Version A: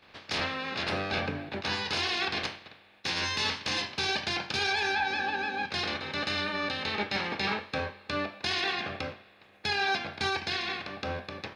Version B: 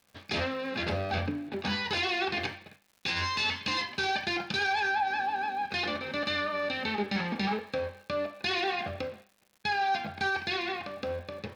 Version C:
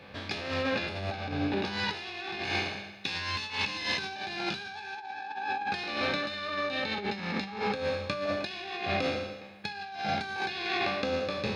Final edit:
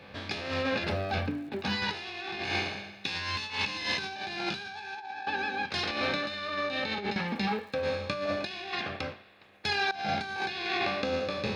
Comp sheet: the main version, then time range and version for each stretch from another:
C
0.84–1.82 s: from B
5.27–5.91 s: from A
7.16–7.83 s: from B
8.73–9.91 s: from A

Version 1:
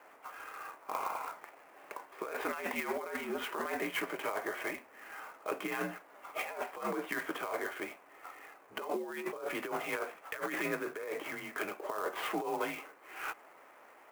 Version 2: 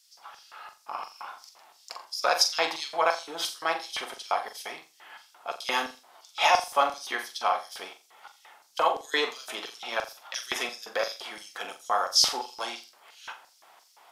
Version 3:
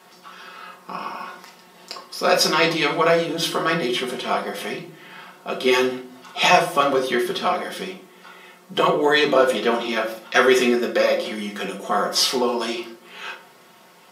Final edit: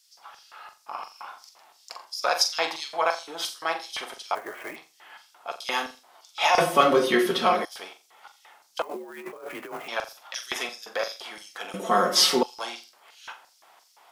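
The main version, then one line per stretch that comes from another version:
2
4.35–4.76 s: from 1
6.58–7.65 s: from 3
8.82–9.88 s: from 1
11.74–12.43 s: from 3

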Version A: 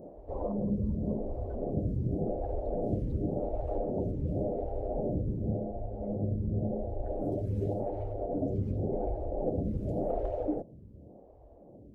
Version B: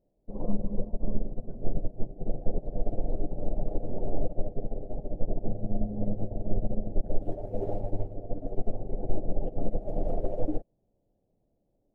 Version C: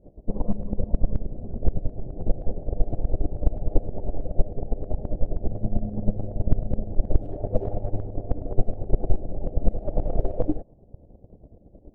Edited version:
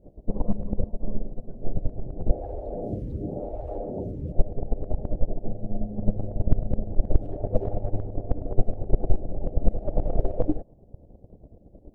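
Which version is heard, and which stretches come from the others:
C
0.86–1.74 s: from B
2.31–4.32 s: from A
5.25–5.98 s: from B

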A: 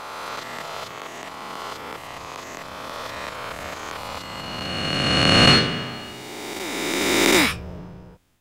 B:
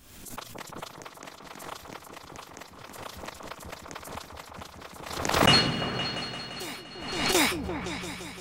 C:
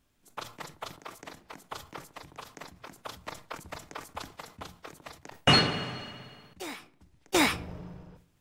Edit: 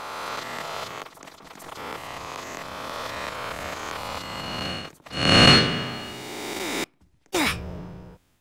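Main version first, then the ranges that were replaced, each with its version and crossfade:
A
1.03–1.77 s: from B
4.78–5.22 s: from C, crossfade 0.24 s
6.84–7.46 s: from C

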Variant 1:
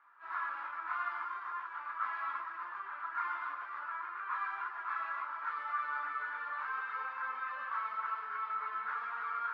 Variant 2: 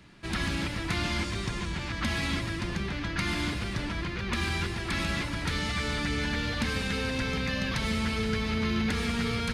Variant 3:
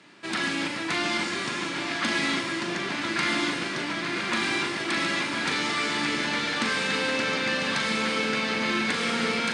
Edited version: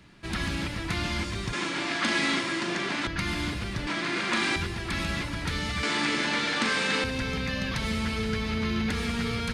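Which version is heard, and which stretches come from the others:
2
1.53–3.07 s: from 3
3.87–4.56 s: from 3
5.83–7.04 s: from 3
not used: 1

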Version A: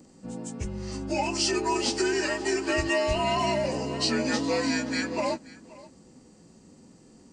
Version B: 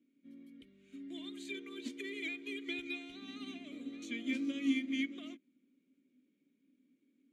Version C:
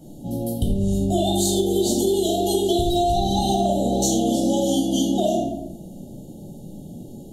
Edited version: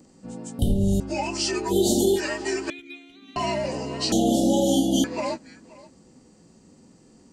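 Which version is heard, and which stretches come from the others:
A
0.59–1.00 s: from C
1.70–2.18 s: from C, crossfade 0.06 s
2.70–3.36 s: from B
4.12–5.04 s: from C

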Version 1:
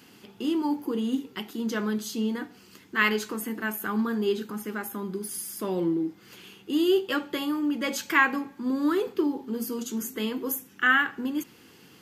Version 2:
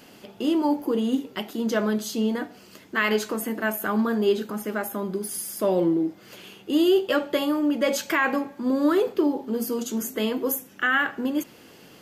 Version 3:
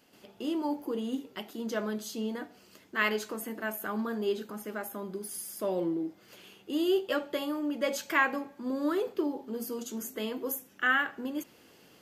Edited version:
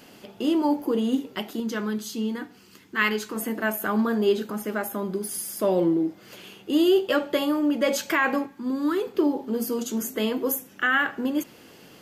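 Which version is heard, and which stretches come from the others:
2
1.60–3.36 s: from 1
8.46–9.14 s: from 1
not used: 3

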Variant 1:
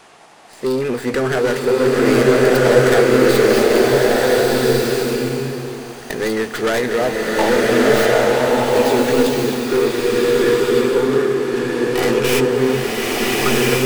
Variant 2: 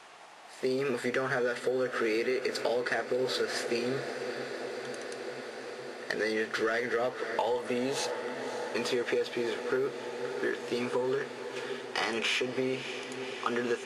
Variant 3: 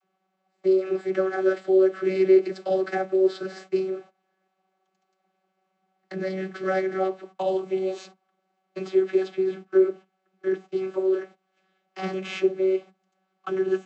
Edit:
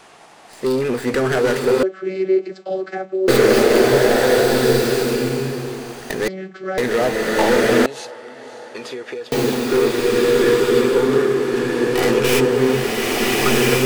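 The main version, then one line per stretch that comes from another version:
1
1.83–3.28 s: from 3
6.28–6.78 s: from 3
7.86–9.32 s: from 2

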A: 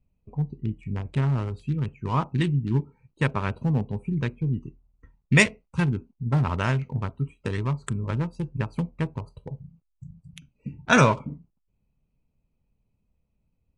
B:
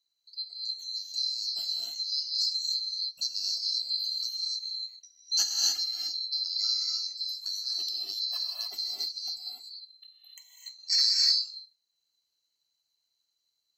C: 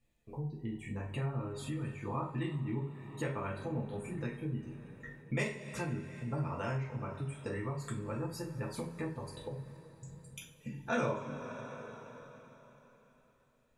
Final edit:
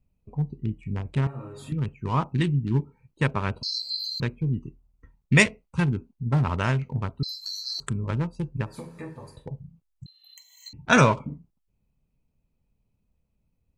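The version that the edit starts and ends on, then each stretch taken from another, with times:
A
1.27–1.72 s: from C
3.63–4.20 s: from B
7.23–7.80 s: from B
8.69–9.37 s: from C, crossfade 0.24 s
10.06–10.73 s: from B

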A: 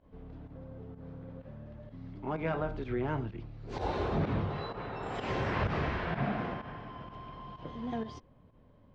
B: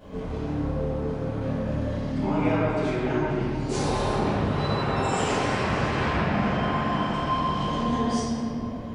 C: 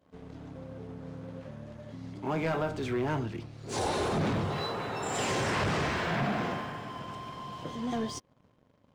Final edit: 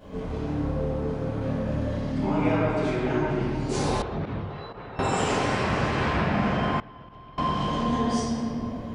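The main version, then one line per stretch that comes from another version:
B
4.02–4.99 s: from A
6.80–7.38 s: from A
not used: C

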